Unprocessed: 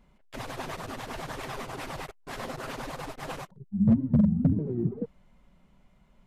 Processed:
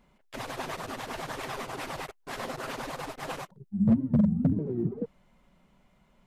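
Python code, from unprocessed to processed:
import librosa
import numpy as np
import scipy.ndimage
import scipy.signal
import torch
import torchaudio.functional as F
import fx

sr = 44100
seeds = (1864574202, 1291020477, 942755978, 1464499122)

y = fx.low_shelf(x, sr, hz=140.0, db=-8.0)
y = F.gain(torch.from_numpy(y), 1.5).numpy()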